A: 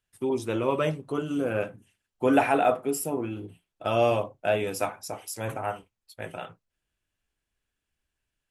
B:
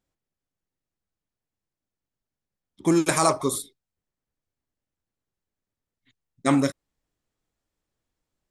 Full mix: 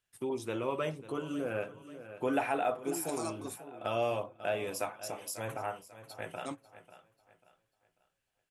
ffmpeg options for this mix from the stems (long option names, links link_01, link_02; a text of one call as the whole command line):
ffmpeg -i stem1.wav -i stem2.wav -filter_complex "[0:a]equalizer=frequency=120:width=1.8:gain=4,volume=-0.5dB,asplit=3[link_01][link_02][link_03];[link_02]volume=-18dB[link_04];[1:a]equalizer=frequency=1700:width=2.4:gain=-13,volume=-12.5dB[link_05];[link_03]apad=whole_len=375182[link_06];[link_05][link_06]sidechaingate=range=-33dB:threshold=-44dB:ratio=16:detection=peak[link_07];[link_04]aecho=0:1:542|1084|1626|2168|2710:1|0.33|0.109|0.0359|0.0119[link_08];[link_01][link_07][link_08]amix=inputs=3:normalize=0,lowshelf=frequency=190:gain=-10,acompressor=threshold=-41dB:ratio=1.5" out.wav